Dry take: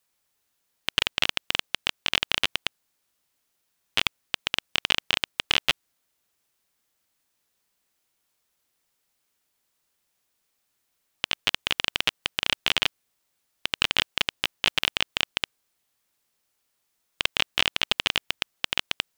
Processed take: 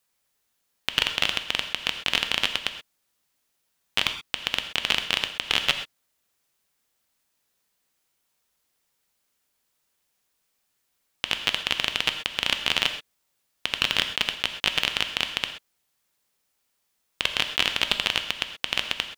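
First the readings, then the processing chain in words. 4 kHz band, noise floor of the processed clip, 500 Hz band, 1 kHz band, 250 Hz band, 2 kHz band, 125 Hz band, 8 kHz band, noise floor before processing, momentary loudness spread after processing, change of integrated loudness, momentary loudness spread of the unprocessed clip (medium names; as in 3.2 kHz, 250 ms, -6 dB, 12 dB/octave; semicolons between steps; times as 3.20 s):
+1.0 dB, -75 dBFS, +1.0 dB, +1.0 dB, +0.5 dB, +1.0 dB, +0.5 dB, +1.0 dB, -76 dBFS, 7 LU, +1.0 dB, 7 LU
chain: gated-style reverb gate 150 ms flat, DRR 7 dB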